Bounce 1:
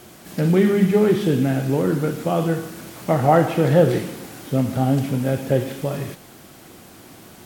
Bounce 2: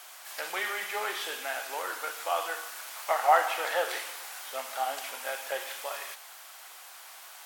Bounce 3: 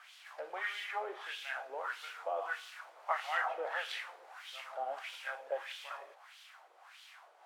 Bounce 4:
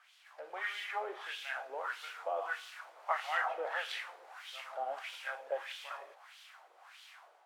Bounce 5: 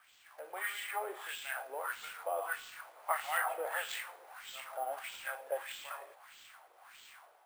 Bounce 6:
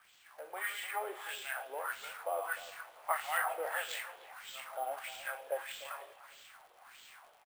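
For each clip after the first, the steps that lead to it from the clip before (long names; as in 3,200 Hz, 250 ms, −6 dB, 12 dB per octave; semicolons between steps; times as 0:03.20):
high-pass filter 810 Hz 24 dB per octave
auto-filter band-pass sine 1.6 Hz 470–3,400 Hz
automatic gain control gain up to 8.5 dB; level −8 dB
decimation without filtering 4×
surface crackle 85 per second −52 dBFS; far-end echo of a speakerphone 300 ms, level −16 dB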